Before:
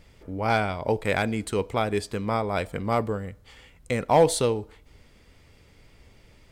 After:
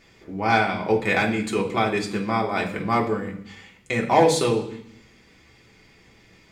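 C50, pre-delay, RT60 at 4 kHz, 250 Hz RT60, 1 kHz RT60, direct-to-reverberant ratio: 10.0 dB, 3 ms, 0.85 s, 0.90 s, 0.65 s, -1.0 dB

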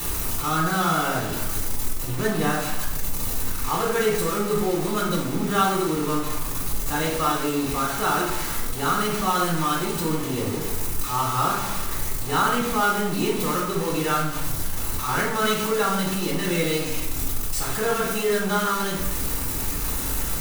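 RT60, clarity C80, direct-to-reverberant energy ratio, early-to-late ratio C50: 0.90 s, 7.0 dB, -8.0 dB, 3.5 dB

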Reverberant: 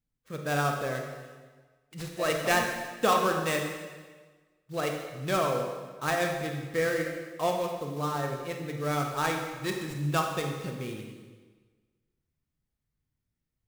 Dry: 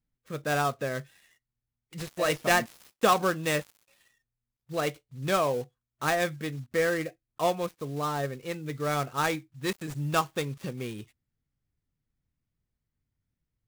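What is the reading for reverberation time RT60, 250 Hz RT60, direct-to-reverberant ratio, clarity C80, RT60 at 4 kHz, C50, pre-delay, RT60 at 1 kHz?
1.4 s, 1.4 s, 2.5 dB, 6.0 dB, 1.2 s, 4.0 dB, 31 ms, 1.4 s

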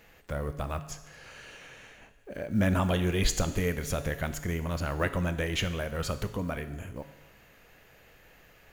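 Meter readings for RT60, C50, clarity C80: 1.1 s, 12.5 dB, 14.0 dB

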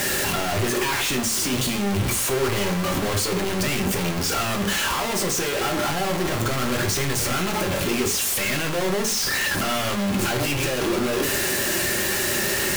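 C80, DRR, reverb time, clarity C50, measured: 14.0 dB, 2.5 dB, 0.50 s, 10.0 dB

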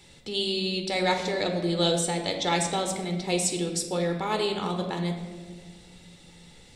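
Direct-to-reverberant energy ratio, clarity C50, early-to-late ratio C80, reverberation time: 3.5 dB, 6.5 dB, 8.5 dB, 1.7 s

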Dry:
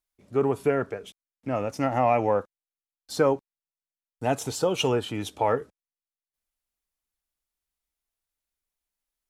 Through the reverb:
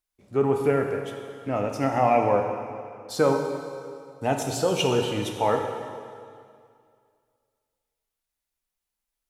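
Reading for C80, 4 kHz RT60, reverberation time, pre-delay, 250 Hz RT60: 5.5 dB, 2.1 s, 2.2 s, 7 ms, 2.3 s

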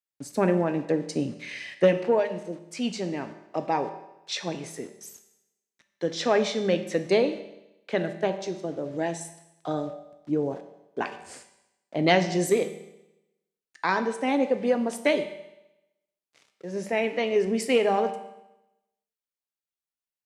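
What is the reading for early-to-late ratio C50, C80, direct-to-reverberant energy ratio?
11.0 dB, 13.0 dB, 7.5 dB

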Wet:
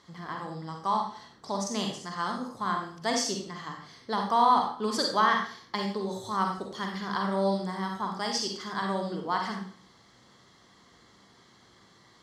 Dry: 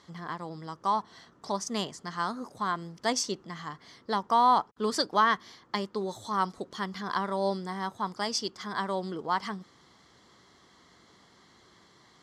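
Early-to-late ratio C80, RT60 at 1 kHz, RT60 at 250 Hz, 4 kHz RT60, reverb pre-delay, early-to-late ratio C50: 8.0 dB, 0.50 s, 0.50 s, 0.45 s, 40 ms, 4.0 dB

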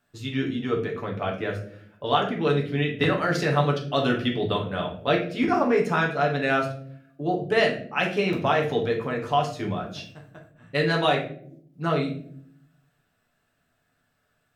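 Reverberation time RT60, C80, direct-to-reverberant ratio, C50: no single decay rate, 12.5 dB, -1.0 dB, 8.0 dB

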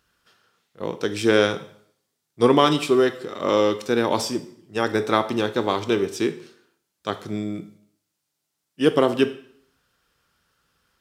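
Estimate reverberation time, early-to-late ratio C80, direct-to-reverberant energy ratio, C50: 0.60 s, 17.0 dB, 10.0 dB, 14.0 dB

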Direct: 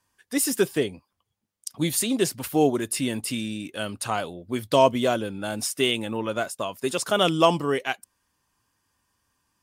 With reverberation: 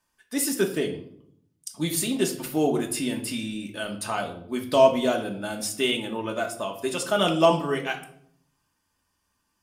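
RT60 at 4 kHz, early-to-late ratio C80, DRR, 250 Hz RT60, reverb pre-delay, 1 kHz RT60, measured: 0.45 s, 14.0 dB, 1.5 dB, 1.0 s, 3 ms, 0.55 s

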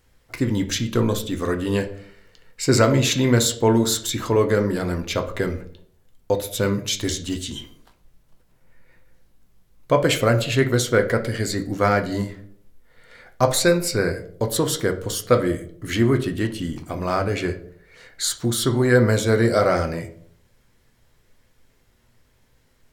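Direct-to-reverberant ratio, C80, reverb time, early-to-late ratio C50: 5.0 dB, 16.5 dB, 0.60 s, 12.5 dB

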